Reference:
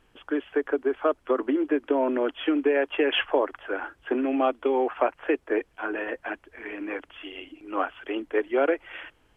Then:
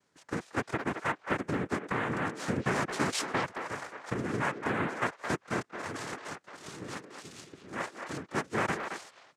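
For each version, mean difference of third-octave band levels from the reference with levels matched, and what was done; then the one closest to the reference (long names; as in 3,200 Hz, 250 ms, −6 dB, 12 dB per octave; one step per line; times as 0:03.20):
15.0 dB: cochlear-implant simulation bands 3
far-end echo of a speakerphone 220 ms, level −6 dB
level −8 dB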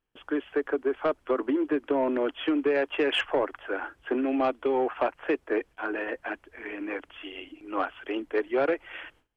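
2.0 dB: noise gate with hold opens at −50 dBFS
in parallel at −7.5 dB: sine wavefolder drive 6 dB, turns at −10 dBFS
on the sum: level −8 dB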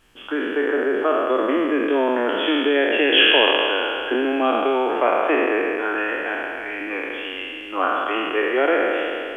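7.0 dB: peak hold with a decay on every bin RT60 2.57 s
high-shelf EQ 2,300 Hz +10 dB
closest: second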